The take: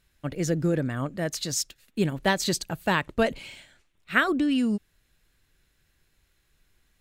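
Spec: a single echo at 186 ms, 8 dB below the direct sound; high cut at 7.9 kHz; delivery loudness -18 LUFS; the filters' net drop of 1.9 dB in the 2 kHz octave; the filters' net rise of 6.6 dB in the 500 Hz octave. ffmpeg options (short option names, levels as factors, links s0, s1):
-af "lowpass=7900,equalizer=f=500:t=o:g=8.5,equalizer=f=2000:t=o:g=-3,aecho=1:1:186:0.398,volume=2"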